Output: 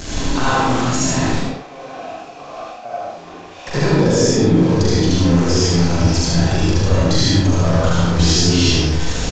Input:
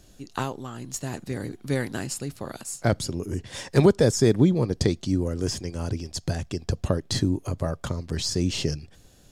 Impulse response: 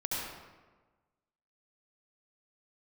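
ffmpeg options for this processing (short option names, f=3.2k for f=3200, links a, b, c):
-filter_complex "[0:a]aeval=exprs='val(0)+0.5*0.0501*sgn(val(0))':c=same,acompressor=threshold=-21dB:ratio=5,asettb=1/sr,asplit=3[a][b][c];[a]atrim=end=1.314[d];[b]atrim=start=1.31:end=3.67,asetpts=PTS-STARTPTS,afade=t=in:d=0.004:c=qsin,afade=t=out:st=2.356:d=0.004:c=qsin,asplit=3[e][f][g];[e]bandpass=f=730:t=q:w=8,volume=0dB[h];[f]bandpass=f=1.09k:t=q:w=8,volume=-6dB[i];[g]bandpass=f=2.44k:t=q:w=8,volume=-9dB[j];[h][i][j]amix=inputs=3:normalize=0[k];[c]atrim=start=3.666[l];[d][k]acrossfade=d=0.004:c1=hsin:c2=qsin[m];[m][l]acrossfade=d=0.004:c1=qsin:c2=hsin,aeval=exprs='val(0)*gte(abs(val(0)),0.00473)':c=same,aecho=1:1:41|76:0.708|0.668[n];[1:a]atrim=start_sample=2205,afade=t=out:st=0.29:d=0.01,atrim=end_sample=13230[o];[n][o]afir=irnorm=-1:irlink=0,aresample=16000,aresample=44100,volume=4dB"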